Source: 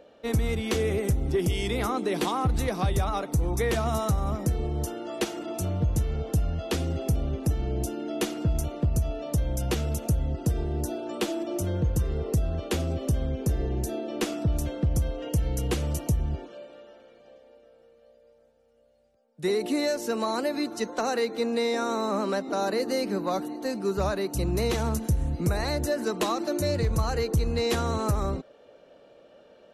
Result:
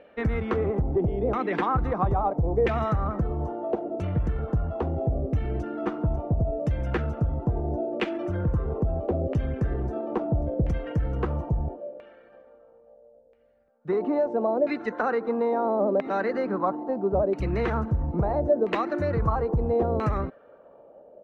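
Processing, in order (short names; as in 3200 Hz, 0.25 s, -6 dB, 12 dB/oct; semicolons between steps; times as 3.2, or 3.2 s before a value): tempo 1.4×; LFO low-pass saw down 0.75 Hz 540–2300 Hz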